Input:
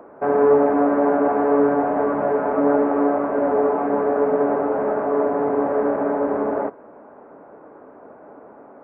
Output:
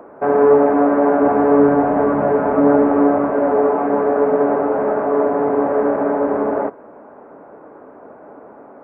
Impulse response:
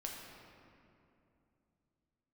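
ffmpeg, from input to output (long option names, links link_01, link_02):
-filter_complex "[0:a]asettb=1/sr,asplit=3[link_01][link_02][link_03];[link_01]atrim=end=1.224[link_04];[link_02]atrim=start=1.22:end=3.3,asetpts=PTS-STARTPTS,afade=type=in:duration=0.004:curve=qsin,afade=type=out:start_time=2.076:duration=0.004:curve=qsin,bass=frequency=250:gain=7,treble=frequency=4000:gain=2[link_05];[link_03]atrim=start=3.296[link_06];[link_04][link_05]acrossfade=duration=0.004:curve1=hsin:curve2=qsin[link_07];[link_07][link_06]acrossfade=duration=0.004:curve1=qsin:curve2=hsin,volume=3.5dB"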